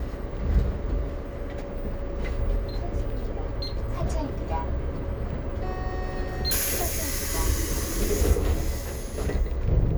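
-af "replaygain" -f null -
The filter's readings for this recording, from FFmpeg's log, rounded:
track_gain = +13.3 dB
track_peak = 0.232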